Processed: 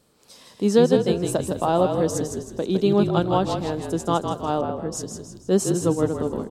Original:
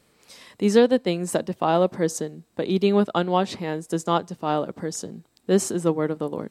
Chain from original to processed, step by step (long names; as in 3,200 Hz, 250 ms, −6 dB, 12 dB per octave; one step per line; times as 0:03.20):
parametric band 2,100 Hz −9 dB 0.75 octaves
echo with shifted repeats 159 ms, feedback 42%, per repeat −41 Hz, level −5.5 dB
on a send at −18.5 dB: convolution reverb RT60 0.75 s, pre-delay 136 ms
0:04.61–0:05.11: on the sum: multiband upward and downward expander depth 70%